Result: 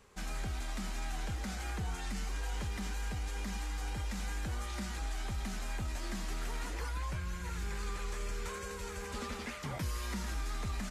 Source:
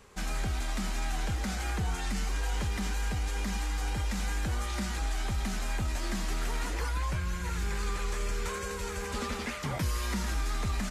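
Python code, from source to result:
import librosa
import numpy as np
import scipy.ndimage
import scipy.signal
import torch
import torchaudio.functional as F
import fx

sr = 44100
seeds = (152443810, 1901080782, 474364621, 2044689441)

y = fx.quant_float(x, sr, bits=8, at=(2.72, 3.25))
y = F.gain(torch.from_numpy(y), -6.0).numpy()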